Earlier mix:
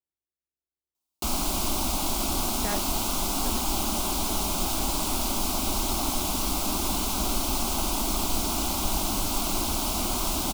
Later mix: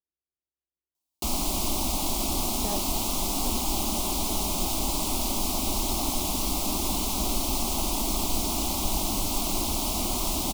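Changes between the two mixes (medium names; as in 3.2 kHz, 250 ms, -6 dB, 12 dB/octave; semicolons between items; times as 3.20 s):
speech: add boxcar filter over 17 samples; master: add peaking EQ 1.5 kHz -13 dB 0.44 oct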